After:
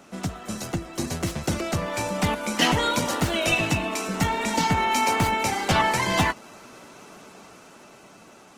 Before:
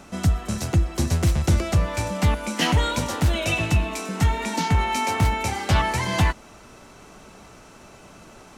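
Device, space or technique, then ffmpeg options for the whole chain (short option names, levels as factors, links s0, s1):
video call: -af "highpass=170,dynaudnorm=f=720:g=5:m=1.78,volume=0.75" -ar 48000 -c:a libopus -b:a 16k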